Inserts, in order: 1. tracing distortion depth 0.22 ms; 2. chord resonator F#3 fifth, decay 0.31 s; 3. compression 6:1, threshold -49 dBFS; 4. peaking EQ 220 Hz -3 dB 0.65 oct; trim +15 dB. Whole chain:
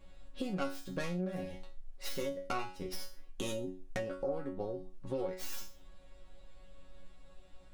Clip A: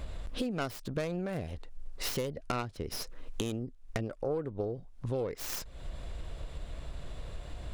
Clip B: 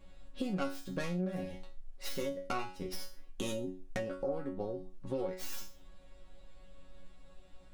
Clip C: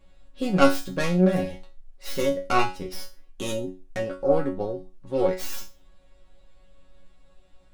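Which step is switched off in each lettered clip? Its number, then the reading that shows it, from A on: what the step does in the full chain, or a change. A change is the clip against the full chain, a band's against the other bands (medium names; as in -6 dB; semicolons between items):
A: 2, 125 Hz band +4.5 dB; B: 4, 250 Hz band +1.5 dB; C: 3, mean gain reduction 7.0 dB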